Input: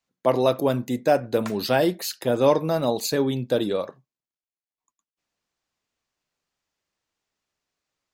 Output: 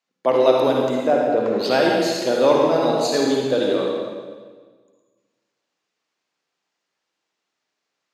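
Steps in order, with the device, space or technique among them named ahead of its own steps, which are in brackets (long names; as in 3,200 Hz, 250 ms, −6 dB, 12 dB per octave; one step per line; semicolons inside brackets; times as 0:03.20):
0:01.04–0:01.58: low-pass filter 1,100 Hz 6 dB per octave
supermarket ceiling speaker (band-pass filter 250–6,500 Hz; convolution reverb RT60 1.5 s, pre-delay 48 ms, DRR −2 dB)
level +1.5 dB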